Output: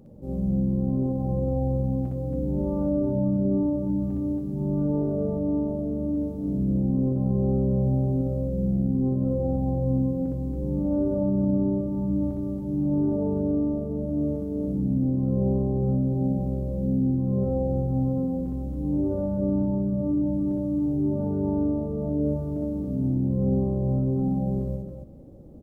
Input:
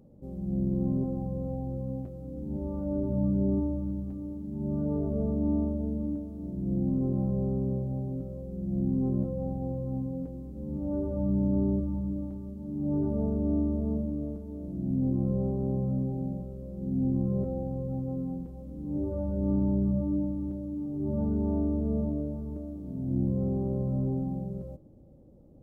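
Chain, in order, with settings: peak limiter -27.5 dBFS, peak gain reduction 10.5 dB; loudspeakers at several distances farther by 21 m -1 dB, 95 m -5 dB; trim +5.5 dB

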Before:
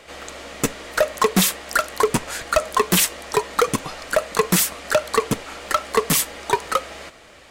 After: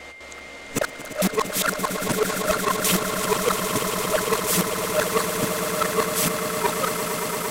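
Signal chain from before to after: time reversed locally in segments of 203 ms; echo with a slow build-up 114 ms, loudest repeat 8, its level -10.5 dB; whistle 2.1 kHz -36 dBFS; trim -5 dB

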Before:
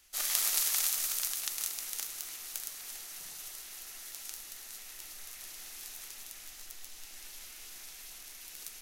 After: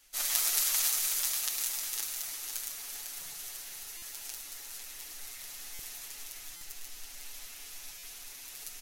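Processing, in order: comb 7.1 ms, depth 89%; on a send: feedback delay 501 ms, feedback 47%, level -7.5 dB; on the sum: buffer glitch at 3.97/5.74/6.56/7.98 s, samples 256, times 8; trim -1.5 dB

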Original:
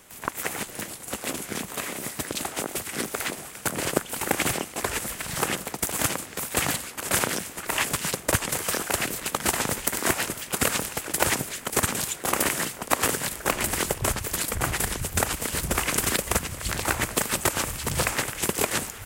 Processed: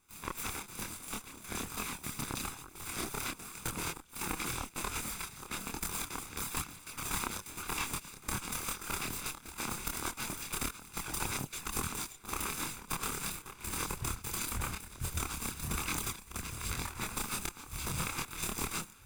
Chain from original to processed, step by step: comb filter that takes the minimum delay 0.81 ms; compression, threshold -27 dBFS, peak gain reduction 10.5 dB; trance gate ".xxxxxx.xxxxxx.." 177 bpm -12 dB; chorus voices 2, 1.1 Hz, delay 27 ms, depth 3.3 ms; trim -1.5 dB

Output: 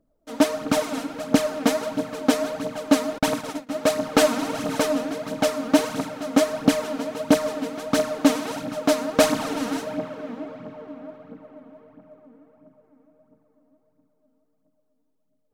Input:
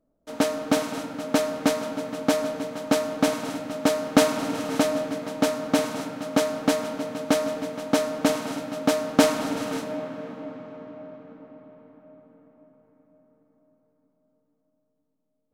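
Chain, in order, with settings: 3.18–3.69 s: gate -30 dBFS, range -46 dB; phaser 1.5 Hz, delay 4.4 ms, feedback 59%

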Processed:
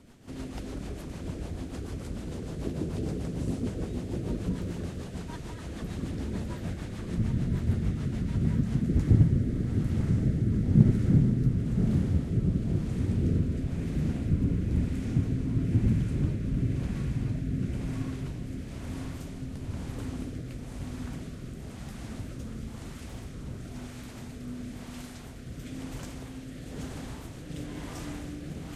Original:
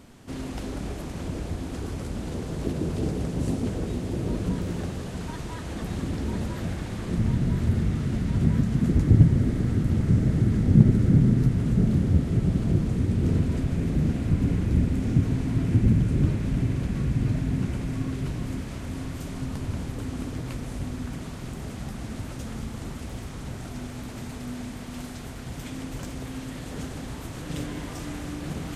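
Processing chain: rotary cabinet horn 6.7 Hz, later 1 Hz, at 8.23 s; trim -3 dB

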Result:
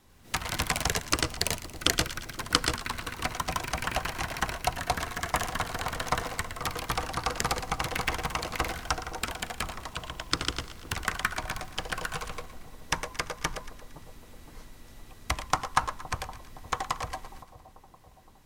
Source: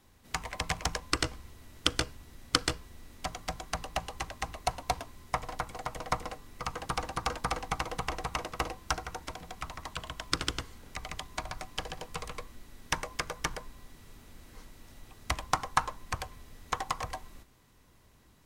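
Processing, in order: ever faster or slower copies 96 ms, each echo +6 st, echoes 2; vibrato 14 Hz 28 cents; two-band feedback delay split 900 Hz, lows 516 ms, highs 115 ms, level -14 dB; trim +2 dB

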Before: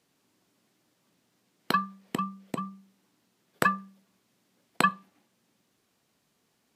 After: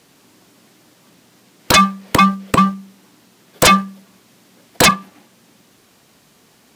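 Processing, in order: waveshaping leveller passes 1; sine folder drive 19 dB, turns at -4 dBFS; trim -1 dB

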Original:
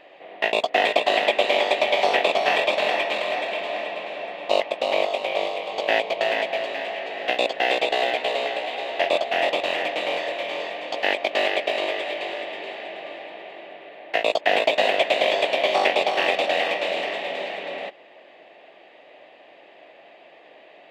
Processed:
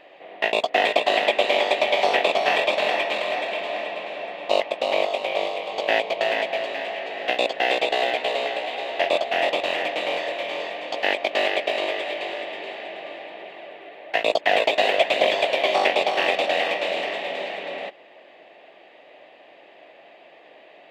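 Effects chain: 13.42–15.72 s: phaser 1.1 Hz, delay 3 ms, feedback 30%

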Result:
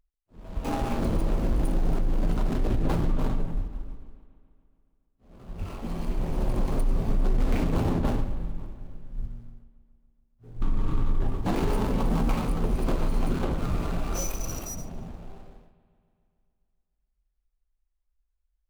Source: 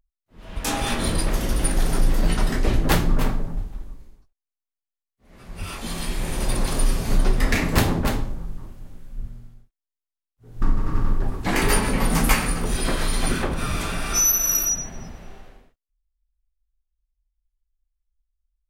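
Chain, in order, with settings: median filter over 25 samples; peak limiter -15.5 dBFS, peak gain reduction 9.5 dB; on a send: bucket-brigade echo 141 ms, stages 4096, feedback 68%, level -17 dB; on the sum: trim -1 dB

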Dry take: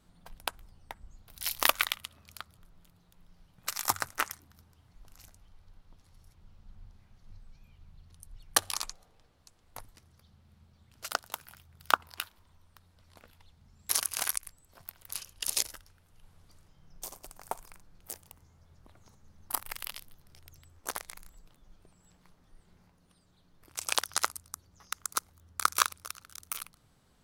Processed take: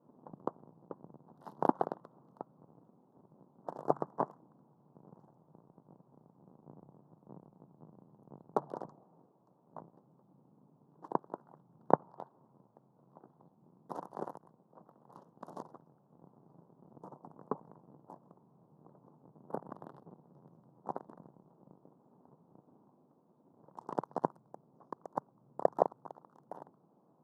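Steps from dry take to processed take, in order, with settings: cycle switcher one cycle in 2, inverted; vibrato 3.3 Hz 96 cents; elliptic band-pass 150–980 Hz, stop band 40 dB; trim +3 dB

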